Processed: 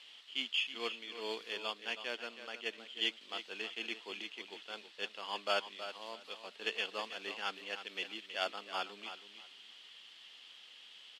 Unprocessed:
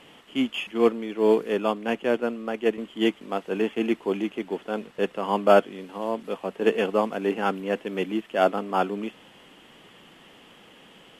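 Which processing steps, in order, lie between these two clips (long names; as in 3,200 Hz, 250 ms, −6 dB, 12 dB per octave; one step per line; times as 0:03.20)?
resonant band-pass 4,200 Hz, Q 3
on a send: repeating echo 321 ms, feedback 20%, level −11 dB
on the sum: level +6.5 dB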